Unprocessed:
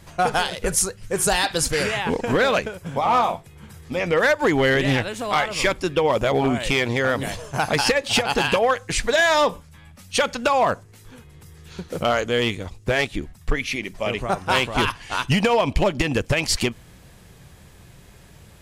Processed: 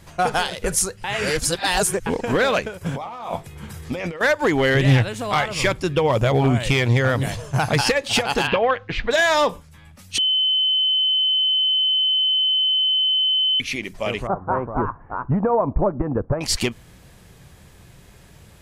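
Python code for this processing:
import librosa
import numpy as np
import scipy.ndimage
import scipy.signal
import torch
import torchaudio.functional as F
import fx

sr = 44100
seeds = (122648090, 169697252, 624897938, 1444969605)

y = fx.over_compress(x, sr, threshold_db=-29.0, ratio=-1.0, at=(2.81, 4.21))
y = fx.peak_eq(y, sr, hz=120.0, db=11.5, octaves=0.74, at=(4.74, 7.81))
y = fx.lowpass(y, sr, hz=3500.0, slope=24, at=(8.47, 9.11))
y = fx.steep_lowpass(y, sr, hz=1300.0, slope=36, at=(14.27, 16.41))
y = fx.edit(y, sr, fx.reverse_span(start_s=1.04, length_s=1.02),
    fx.bleep(start_s=10.18, length_s=3.42, hz=3050.0, db=-16.0), tone=tone)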